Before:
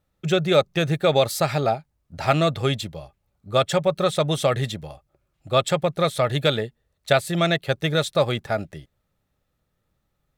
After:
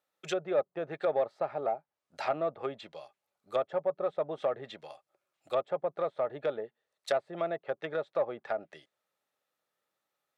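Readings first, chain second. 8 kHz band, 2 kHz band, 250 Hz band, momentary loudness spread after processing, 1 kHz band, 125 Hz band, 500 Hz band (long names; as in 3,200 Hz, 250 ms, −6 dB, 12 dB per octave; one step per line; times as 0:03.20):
below −20 dB, −15.5 dB, −17.0 dB, 12 LU, −10.5 dB, −26.5 dB, −9.0 dB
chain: high-pass filter 530 Hz 12 dB per octave
treble cut that deepens with the level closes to 770 Hz, closed at −22.5 dBFS
soft clipping −13 dBFS, distortion −23 dB
level −4.5 dB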